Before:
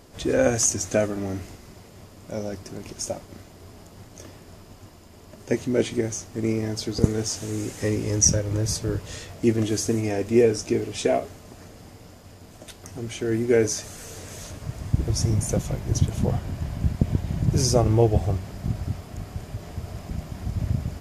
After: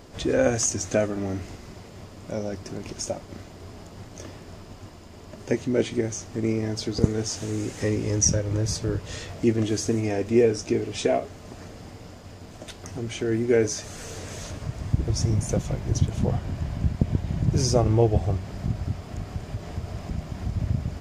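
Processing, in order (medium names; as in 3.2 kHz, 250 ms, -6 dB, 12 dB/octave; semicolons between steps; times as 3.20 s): peaking EQ 12 kHz -12 dB 0.74 oct; in parallel at -1 dB: compression, threshold -35 dBFS, peak gain reduction 22 dB; on the sum: trim -2 dB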